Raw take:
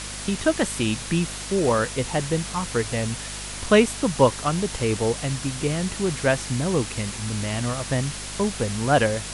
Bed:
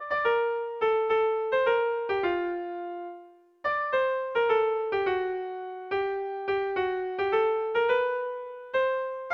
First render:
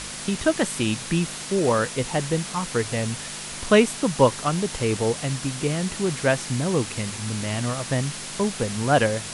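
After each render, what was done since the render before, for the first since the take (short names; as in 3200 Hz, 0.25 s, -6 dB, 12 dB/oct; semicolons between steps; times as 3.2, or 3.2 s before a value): de-hum 50 Hz, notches 2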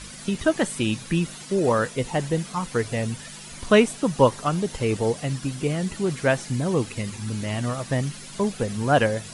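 denoiser 11 dB, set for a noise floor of -35 dBFS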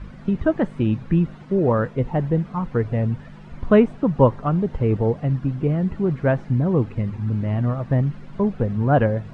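LPF 1400 Hz 12 dB/oct; low shelf 190 Hz +10 dB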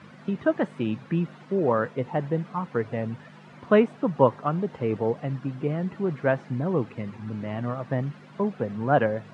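HPF 120 Hz 24 dB/oct; low shelf 350 Hz -9 dB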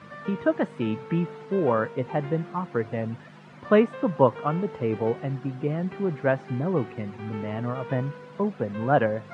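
add bed -14.5 dB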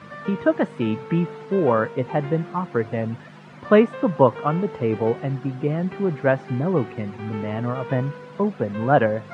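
gain +4 dB; limiter -2 dBFS, peak gain reduction 1 dB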